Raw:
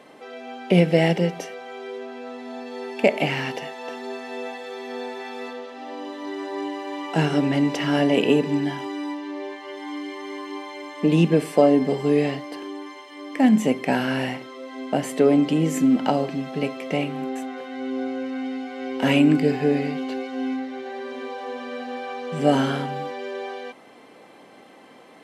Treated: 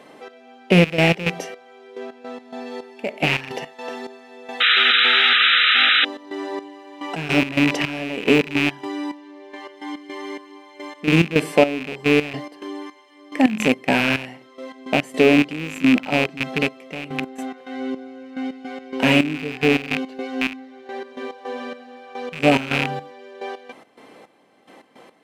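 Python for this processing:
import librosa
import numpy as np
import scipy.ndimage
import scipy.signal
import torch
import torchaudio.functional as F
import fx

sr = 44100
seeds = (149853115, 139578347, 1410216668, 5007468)

y = fx.rattle_buzz(x, sr, strikes_db=-30.0, level_db=-11.0)
y = fx.step_gate(y, sr, bpm=107, pattern='xx...x.x.', floor_db=-12.0, edge_ms=4.5)
y = fx.spec_paint(y, sr, seeds[0], shape='noise', start_s=4.6, length_s=1.45, low_hz=1200.0, high_hz=4000.0, level_db=-18.0)
y = y * librosa.db_to_amplitude(2.5)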